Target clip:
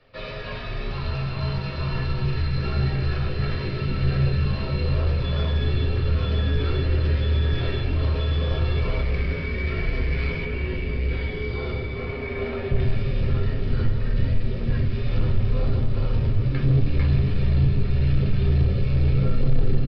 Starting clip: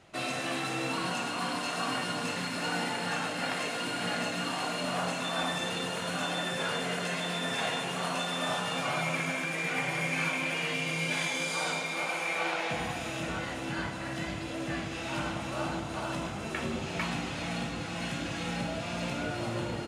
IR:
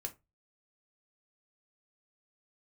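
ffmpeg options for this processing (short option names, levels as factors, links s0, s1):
-filter_complex "[0:a]acrusher=bits=2:mode=log:mix=0:aa=0.000001,highpass=f=95:w=0.5412,highpass=f=95:w=1.3066,afreqshift=-99,asubboost=boost=10.5:cutoff=230,volume=6.31,asoftclip=hard,volume=0.158,aresample=11025,aresample=44100[s0];[1:a]atrim=start_sample=2205[s1];[s0][s1]afir=irnorm=-1:irlink=0,acontrast=76,asettb=1/sr,asplit=3[s2][s3][s4];[s2]atrim=end=10.454[s5];[s3]atrim=start=10.45:end=12.8,asetpts=PTS-STARTPTS,afade=t=in:d=0.004:c=qsin,afade=t=out:st=2.346:d=0.004:c=qsin,highshelf=f=3400:g=-11[s6];[s4]atrim=start=12.796[s7];[s5][s6]acrossfade=d=0.004:c1=hsin:c2=qsin[s8];[s8][s7]acrossfade=d=0.004:c1=qsin:c2=hsin,volume=0.501"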